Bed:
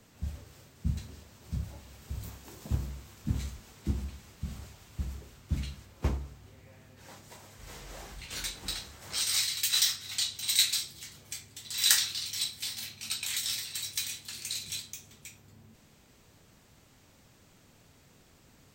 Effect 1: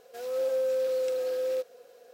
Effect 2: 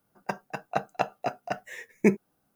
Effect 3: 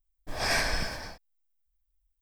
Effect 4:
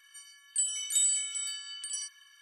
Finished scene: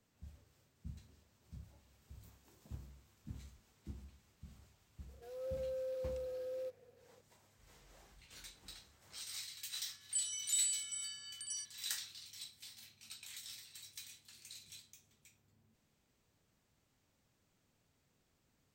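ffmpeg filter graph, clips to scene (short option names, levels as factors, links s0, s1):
-filter_complex "[0:a]volume=0.133[s0];[1:a]equalizer=f=420:w=2.3:g=7[s1];[4:a]equalizer=f=5600:w=1.5:g=7[s2];[s1]atrim=end=2.13,asetpts=PTS-STARTPTS,volume=0.141,afade=t=in:d=0.004:c=hsin,afade=t=out:st=2.126:d=0.004:c=hsin,adelay=5080[s3];[s2]atrim=end=2.41,asetpts=PTS-STARTPTS,volume=0.299,afade=t=in:d=0.004:c=hsin,afade=t=out:st=2.406:d=0.004:c=hsin,adelay=9570[s4];[s0][s3][s4]amix=inputs=3:normalize=0"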